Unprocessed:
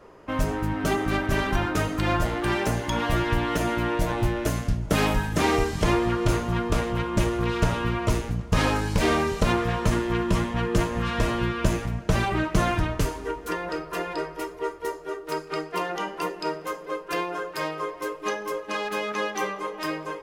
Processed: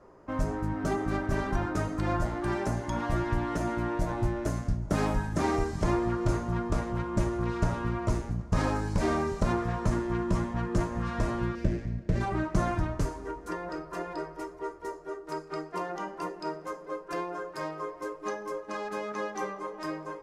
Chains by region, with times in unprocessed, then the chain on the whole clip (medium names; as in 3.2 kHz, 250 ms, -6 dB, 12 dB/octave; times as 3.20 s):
11.55–12.21 s: low-pass 4.2 kHz 24 dB/octave + high-order bell 990 Hz -15 dB 1.2 oct + sliding maximum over 5 samples
whole clip: low-pass 7.7 kHz 12 dB/octave; peaking EQ 3 kHz -12.5 dB 1.2 oct; band-stop 460 Hz, Q 12; trim -4 dB